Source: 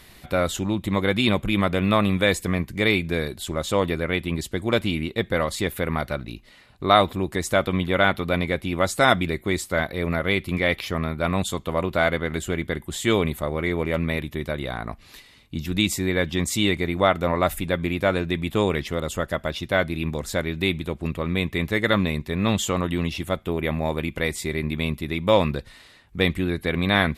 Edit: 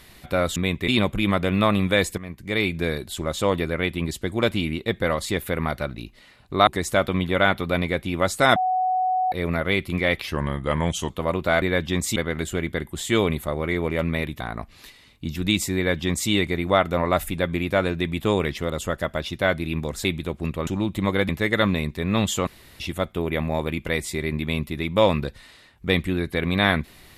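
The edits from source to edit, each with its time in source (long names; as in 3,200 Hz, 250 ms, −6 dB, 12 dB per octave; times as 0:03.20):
0:00.56–0:01.18: swap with 0:21.28–0:21.60
0:02.48–0:03.09: fade in, from −17 dB
0:06.97–0:07.26: remove
0:09.15–0:09.91: beep over 743 Hz −19 dBFS
0:10.86–0:11.59: play speed 88%
0:14.35–0:14.70: remove
0:16.06–0:16.60: duplicate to 0:12.11
0:20.35–0:20.66: remove
0:22.78–0:23.11: fill with room tone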